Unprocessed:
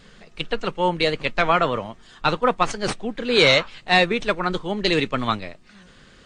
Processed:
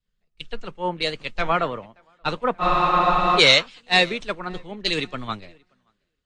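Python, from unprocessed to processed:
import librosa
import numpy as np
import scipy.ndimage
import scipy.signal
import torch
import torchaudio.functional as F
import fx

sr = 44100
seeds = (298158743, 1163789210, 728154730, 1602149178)

y = fx.echo_tape(x, sr, ms=580, feedback_pct=28, wet_db=-18.0, lp_hz=5600.0, drive_db=7.0, wow_cents=11)
y = fx.spec_freeze(y, sr, seeds[0], at_s=2.63, hold_s=0.76)
y = fx.band_widen(y, sr, depth_pct=100)
y = y * librosa.db_to_amplitude(-3.5)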